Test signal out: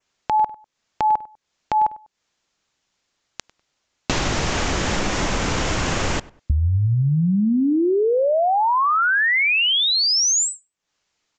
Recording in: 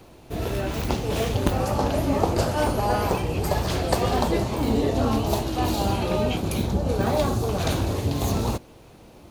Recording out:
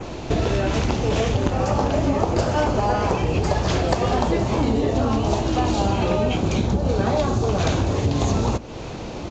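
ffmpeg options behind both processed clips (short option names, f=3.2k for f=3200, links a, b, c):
-filter_complex "[0:a]adynamicequalizer=threshold=0.00562:dfrequency=4200:dqfactor=2.1:tfrequency=4200:tqfactor=2.1:attack=5:release=100:ratio=0.375:range=2.5:mode=cutabove:tftype=bell,acompressor=threshold=-35dB:ratio=6,asplit=2[a][b];[b]adelay=99,lowpass=f=2.2k:p=1,volume=-20dB,asplit=2[c][d];[d]adelay=99,lowpass=f=2.2k:p=1,volume=0.29[e];[c][e]amix=inputs=2:normalize=0[f];[a][f]amix=inputs=2:normalize=0,aresample=16000,aresample=44100,alimiter=level_in=22dB:limit=-1dB:release=50:level=0:latency=1,volume=-5.5dB"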